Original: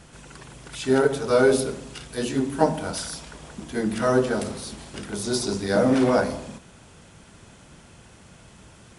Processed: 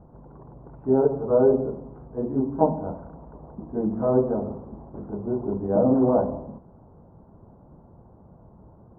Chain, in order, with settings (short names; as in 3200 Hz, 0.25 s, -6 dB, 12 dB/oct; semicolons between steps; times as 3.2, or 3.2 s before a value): steep low-pass 990 Hz 36 dB/oct